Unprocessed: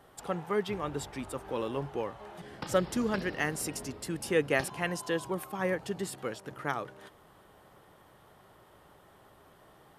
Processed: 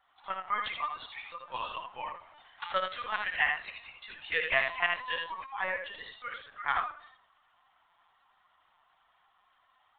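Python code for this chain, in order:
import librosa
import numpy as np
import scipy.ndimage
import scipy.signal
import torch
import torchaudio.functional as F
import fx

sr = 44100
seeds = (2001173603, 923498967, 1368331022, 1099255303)

p1 = scipy.signal.sosfilt(scipy.signal.butter(4, 860.0, 'highpass', fs=sr, output='sos'), x)
p2 = fx.notch(p1, sr, hz=1600.0, q=17.0)
p3 = fx.noise_reduce_blind(p2, sr, reduce_db=12)
p4 = p3 + fx.room_early_taps(p3, sr, ms=(55, 78), db=(-10.5, -5.5), dry=0)
p5 = fx.room_shoebox(p4, sr, seeds[0], volume_m3=2700.0, walls='furnished', distance_m=0.87)
p6 = fx.lpc_vocoder(p5, sr, seeds[1], excitation='pitch_kept', order=16)
y = p6 * librosa.db_to_amplitude(5.0)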